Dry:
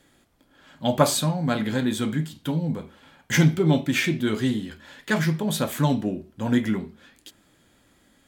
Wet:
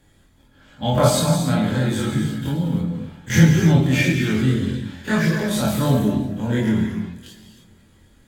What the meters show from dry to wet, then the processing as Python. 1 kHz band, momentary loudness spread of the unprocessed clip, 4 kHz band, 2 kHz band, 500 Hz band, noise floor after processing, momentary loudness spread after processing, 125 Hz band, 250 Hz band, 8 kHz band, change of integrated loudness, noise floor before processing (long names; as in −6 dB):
+3.0 dB, 10 LU, +2.5 dB, +3.0 dB, +3.5 dB, −55 dBFS, 10 LU, +7.0 dB, +4.5 dB, +2.5 dB, +4.5 dB, −62 dBFS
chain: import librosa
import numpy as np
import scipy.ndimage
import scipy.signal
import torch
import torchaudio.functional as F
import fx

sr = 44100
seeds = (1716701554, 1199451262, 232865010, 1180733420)

p1 = fx.spec_dilate(x, sr, span_ms=60)
p2 = fx.low_shelf(p1, sr, hz=210.0, db=7.5)
p3 = fx.rev_gated(p2, sr, seeds[0], gate_ms=330, shape='flat', drr_db=3.0)
p4 = fx.chorus_voices(p3, sr, voices=6, hz=0.39, base_ms=23, depth_ms=1.3, mix_pct=50)
p5 = p4 + fx.echo_feedback(p4, sr, ms=339, feedback_pct=42, wet_db=-22.5, dry=0)
y = p5 * librosa.db_to_amplitude(-1.0)